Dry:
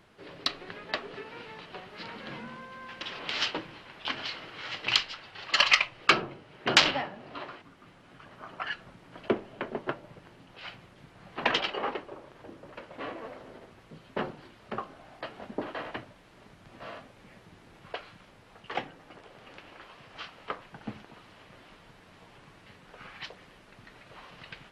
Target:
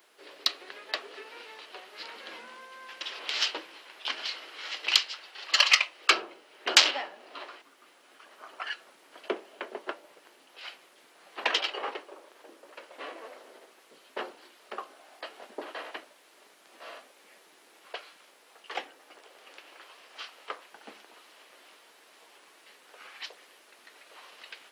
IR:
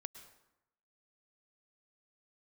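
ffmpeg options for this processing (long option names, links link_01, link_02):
-af "highpass=frequency=340:width=0.5412,highpass=frequency=340:width=1.3066,aemphasis=mode=production:type=75kf,volume=-3.5dB"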